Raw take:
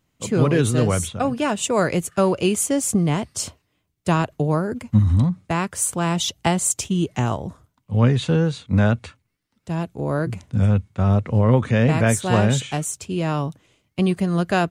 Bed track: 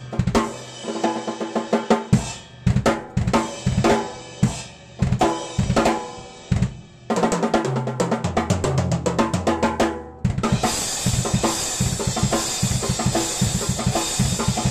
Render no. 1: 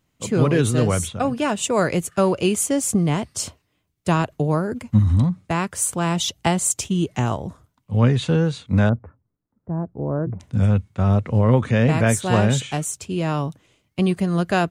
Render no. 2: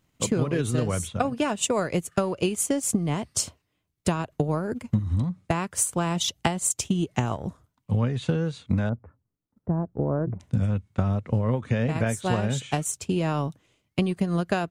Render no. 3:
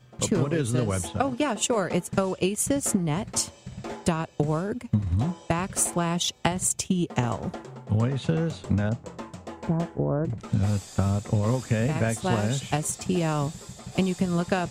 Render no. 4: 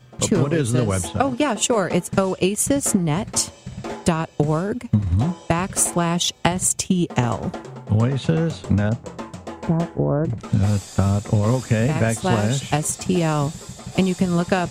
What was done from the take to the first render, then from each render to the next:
0:08.89–0:10.40: Gaussian smoothing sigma 7.6 samples
transient designer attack +6 dB, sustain −6 dB; downward compressor, threshold −21 dBFS, peak gain reduction 14.5 dB
mix in bed track −19 dB
level +5.5 dB

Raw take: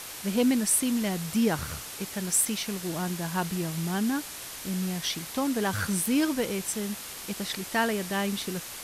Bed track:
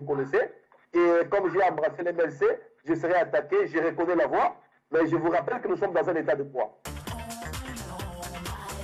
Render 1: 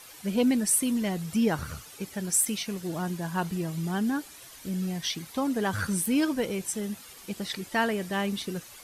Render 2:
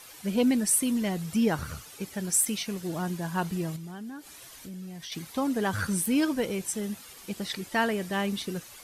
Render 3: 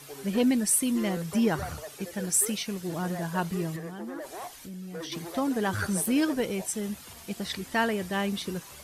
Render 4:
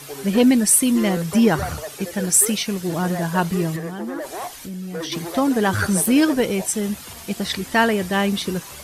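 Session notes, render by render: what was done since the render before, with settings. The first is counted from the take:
broadband denoise 11 dB, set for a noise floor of −40 dBFS
0:03.76–0:05.12: downward compressor 3 to 1, threshold −41 dBFS
mix in bed track −16.5 dB
level +9 dB

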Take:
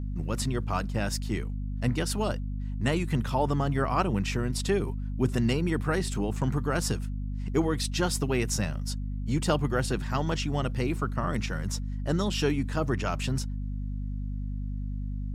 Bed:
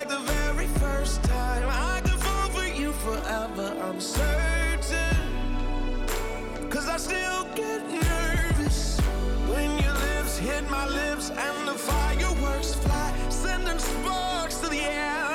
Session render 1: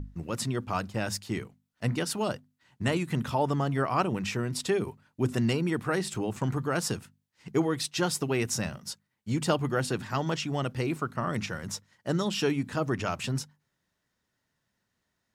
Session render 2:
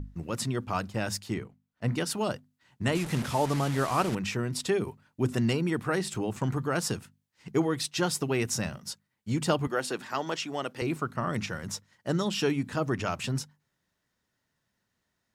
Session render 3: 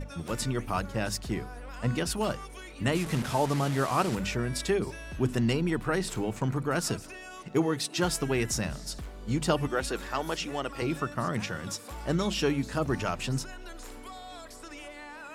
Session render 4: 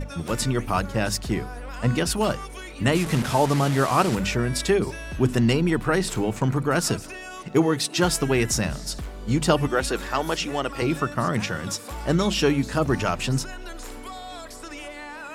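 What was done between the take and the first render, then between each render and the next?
mains-hum notches 50/100/150/200/250 Hz
0:01.34–0:01.88: high-shelf EQ 2,900 Hz −10 dB; 0:02.95–0:04.15: linear delta modulator 64 kbit/s, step −31 dBFS; 0:09.67–0:10.82: high-pass filter 310 Hz
mix in bed −16.5 dB
level +6.5 dB

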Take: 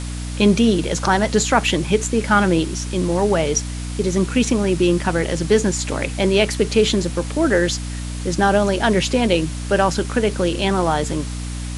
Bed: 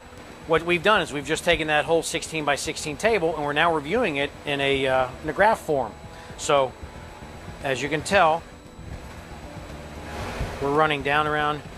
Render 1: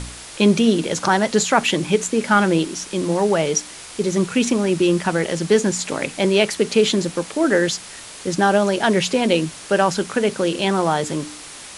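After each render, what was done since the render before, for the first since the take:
hum removal 60 Hz, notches 5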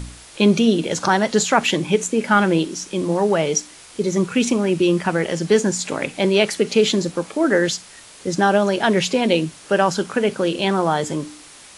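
noise reduction from a noise print 6 dB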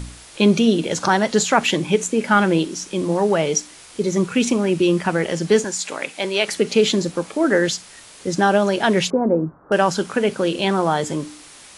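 0:05.64–0:06.48: high-pass filter 740 Hz 6 dB per octave
0:09.10–0:09.72: Butterworth low-pass 1,400 Hz 48 dB per octave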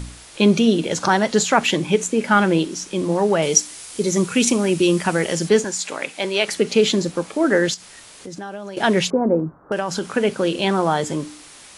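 0:03.42–0:05.49: high-shelf EQ 5,200 Hz +11 dB
0:07.74–0:08.77: downward compressor 3 to 1, threshold −34 dBFS
0:09.39–0:10.07: downward compressor, threshold −18 dBFS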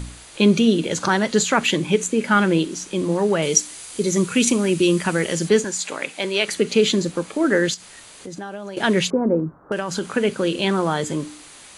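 notch filter 5,400 Hz, Q 10
dynamic equaliser 750 Hz, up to −6 dB, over −33 dBFS, Q 1.9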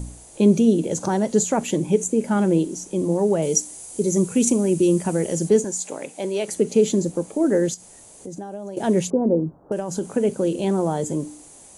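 flat-topped bell 2,300 Hz −14.5 dB 2.4 octaves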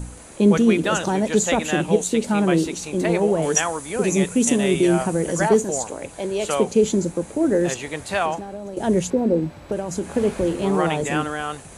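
mix in bed −4.5 dB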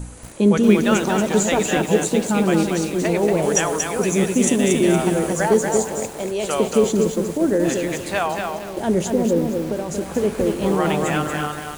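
tape delay 106 ms, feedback 88%, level −16 dB, low-pass 1,700 Hz
feedback echo at a low word length 233 ms, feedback 35%, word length 6 bits, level −4 dB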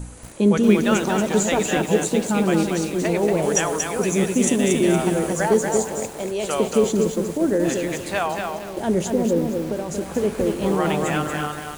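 level −1.5 dB

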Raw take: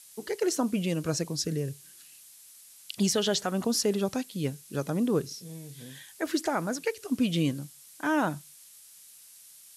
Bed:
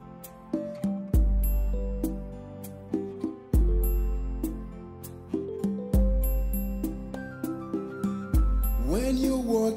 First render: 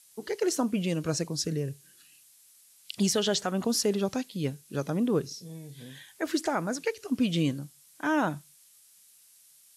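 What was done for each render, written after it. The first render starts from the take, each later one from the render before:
noise reduction from a noise print 6 dB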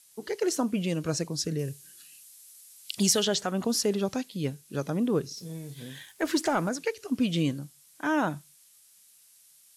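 0:01.59–0:03.25: high-shelf EQ 3,700 Hz +7.5 dB
0:05.37–0:06.69: leveller curve on the samples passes 1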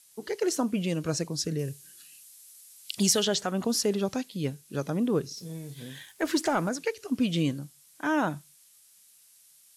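no processing that can be heard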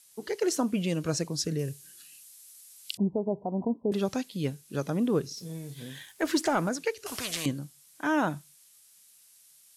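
0:02.97–0:03.92: Chebyshev low-pass with heavy ripple 1,000 Hz, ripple 3 dB
0:07.06–0:07.46: every bin compressed towards the loudest bin 4 to 1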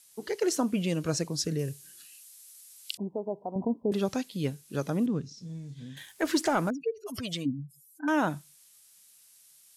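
0:02.06–0:03.56: high-pass filter 500 Hz 6 dB per octave
0:05.06–0:05.97: drawn EQ curve 260 Hz 0 dB, 370 Hz −11 dB, 6,900 Hz −8 dB, 12,000 Hz −27 dB
0:06.70–0:08.08: expanding power law on the bin magnitudes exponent 3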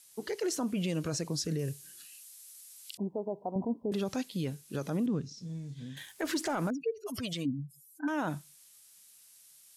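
brickwall limiter −24.5 dBFS, peak gain reduction 11 dB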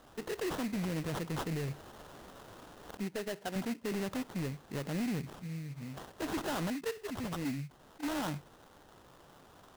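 sample-rate reduction 2,300 Hz, jitter 20%
soft clipping −30 dBFS, distortion −14 dB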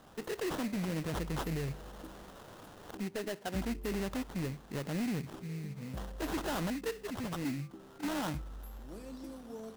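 mix in bed −20.5 dB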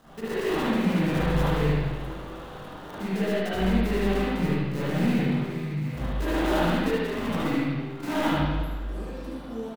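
on a send: single-tap delay 74 ms −5 dB
on the sum: spring reverb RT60 1.4 s, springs 40/53/58 ms, chirp 20 ms, DRR −10 dB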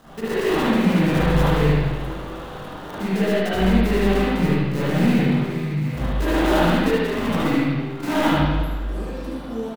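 level +6 dB

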